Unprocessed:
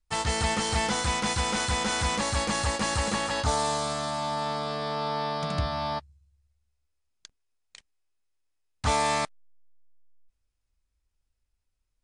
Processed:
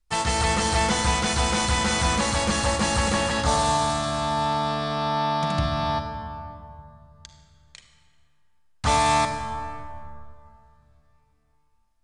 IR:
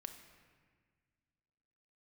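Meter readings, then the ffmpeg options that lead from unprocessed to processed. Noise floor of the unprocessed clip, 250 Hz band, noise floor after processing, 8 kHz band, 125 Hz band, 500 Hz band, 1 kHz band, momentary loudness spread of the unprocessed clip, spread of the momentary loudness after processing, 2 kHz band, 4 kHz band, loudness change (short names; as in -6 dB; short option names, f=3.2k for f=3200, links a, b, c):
-79 dBFS, +6.0 dB, -64 dBFS, +4.0 dB, +5.5 dB, +4.0 dB, +5.5 dB, 5 LU, 14 LU, +4.0 dB, +4.0 dB, +4.5 dB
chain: -filter_complex "[1:a]atrim=start_sample=2205,asetrate=28224,aresample=44100[a];[0:a][a]afir=irnorm=-1:irlink=0,volume=6.5dB"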